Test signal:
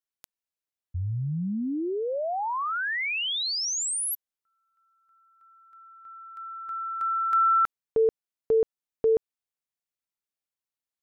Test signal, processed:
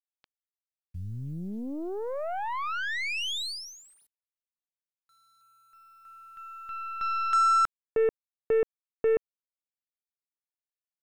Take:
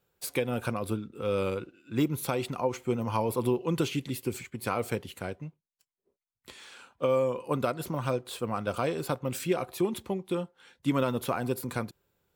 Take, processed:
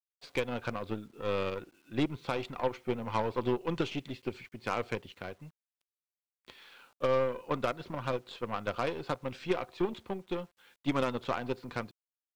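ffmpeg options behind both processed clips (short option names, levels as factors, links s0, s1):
-af "lowpass=f=4400:w=0.5412,lowpass=f=4400:w=1.3066,lowshelf=f=350:g=-4,aeval=exprs='0.178*(cos(1*acos(clip(val(0)/0.178,-1,1)))-cos(1*PI/2))+0.00141*(cos(4*acos(clip(val(0)/0.178,-1,1)))-cos(4*PI/2))+0.00141*(cos(6*acos(clip(val(0)/0.178,-1,1)))-cos(6*PI/2))+0.00891*(cos(7*acos(clip(val(0)/0.178,-1,1)))-cos(7*PI/2))+0.0112*(cos(8*acos(clip(val(0)/0.178,-1,1)))-cos(8*PI/2))':c=same,acrusher=bits=10:mix=0:aa=0.000001,volume=0.891"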